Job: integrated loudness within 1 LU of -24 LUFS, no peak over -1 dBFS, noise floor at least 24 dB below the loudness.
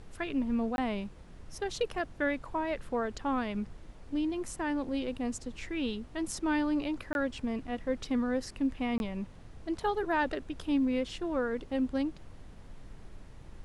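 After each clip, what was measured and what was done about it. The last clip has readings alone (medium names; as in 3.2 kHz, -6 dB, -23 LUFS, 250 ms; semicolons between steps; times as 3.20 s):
dropouts 3; longest dropout 21 ms; noise floor -50 dBFS; noise floor target -58 dBFS; loudness -33.5 LUFS; peak level -18.5 dBFS; loudness target -24.0 LUFS
-> interpolate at 0.76/7.13/8.98 s, 21 ms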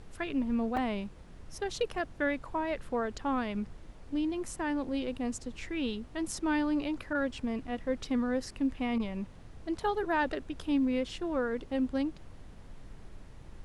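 dropouts 0; noise floor -50 dBFS; noise floor target -58 dBFS
-> noise print and reduce 8 dB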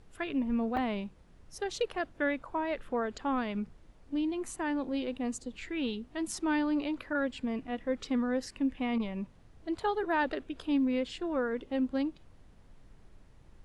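noise floor -58 dBFS; loudness -33.5 LUFS; peak level -18.0 dBFS; loudness target -24.0 LUFS
-> trim +9.5 dB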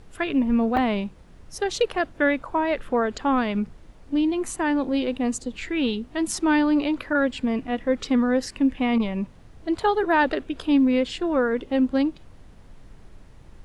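loudness -24.0 LUFS; peak level -8.5 dBFS; noise floor -48 dBFS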